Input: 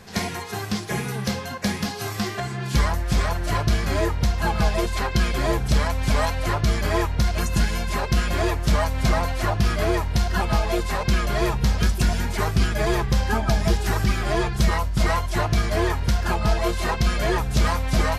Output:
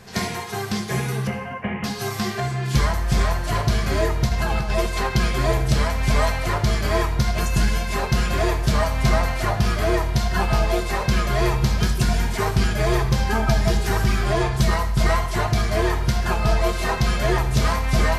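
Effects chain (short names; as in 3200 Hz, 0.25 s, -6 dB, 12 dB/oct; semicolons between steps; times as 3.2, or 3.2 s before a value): 1.27–1.84 rippled Chebyshev low-pass 3000 Hz, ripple 3 dB; 4.29–4.75 negative-ratio compressor -22 dBFS, ratio -0.5; on a send: reverb RT60 0.85 s, pre-delay 4 ms, DRR 4.5 dB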